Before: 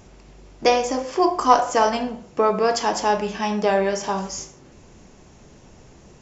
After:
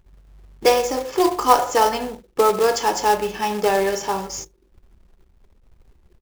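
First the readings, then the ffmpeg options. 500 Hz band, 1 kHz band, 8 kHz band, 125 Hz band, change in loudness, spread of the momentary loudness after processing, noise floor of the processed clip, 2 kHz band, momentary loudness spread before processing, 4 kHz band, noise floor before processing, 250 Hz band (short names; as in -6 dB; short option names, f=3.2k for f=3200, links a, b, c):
+1.5 dB, +1.0 dB, n/a, -3.5 dB, +1.0 dB, 10 LU, -58 dBFS, +1.0 dB, 10 LU, +2.0 dB, -49 dBFS, -1.5 dB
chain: -af "aecho=1:1:2.3:0.43,anlmdn=2.51,acrusher=bits=3:mode=log:mix=0:aa=0.000001"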